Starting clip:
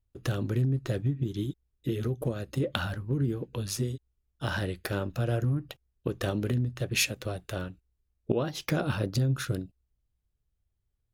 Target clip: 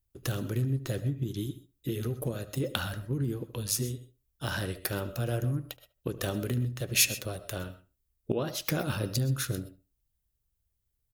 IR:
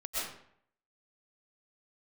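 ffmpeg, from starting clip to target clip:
-filter_complex "[0:a]aemphasis=mode=production:type=50kf,asplit=2[a][b];[b]adelay=74,lowpass=f=1.7k:p=1,volume=-14.5dB,asplit=2[c][d];[d]adelay=74,lowpass=f=1.7k:p=1,volume=0.22[e];[a][c][e]amix=inputs=3:normalize=0,asplit=2[f][g];[1:a]atrim=start_sample=2205,atrim=end_sample=6174[h];[g][h]afir=irnorm=-1:irlink=0,volume=-14.5dB[i];[f][i]amix=inputs=2:normalize=0,volume=-3.5dB"

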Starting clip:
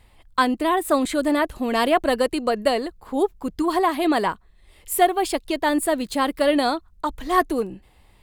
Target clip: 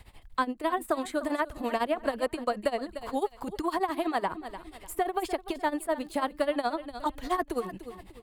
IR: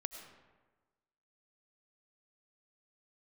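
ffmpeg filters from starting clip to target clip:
-filter_complex "[0:a]tremolo=f=12:d=0.86,asplit=2[a][b];[b]acompressor=threshold=-34dB:ratio=6,volume=-1dB[c];[a][c]amix=inputs=2:normalize=0,aecho=1:1:297|594|891:0.126|0.0415|0.0137,acrossover=split=300|610|1700[d][e][f][g];[d]acompressor=threshold=-39dB:ratio=4[h];[e]acompressor=threshold=-37dB:ratio=4[i];[f]acompressor=threshold=-28dB:ratio=4[j];[g]acompressor=threshold=-44dB:ratio=4[k];[h][i][j][k]amix=inputs=4:normalize=0"

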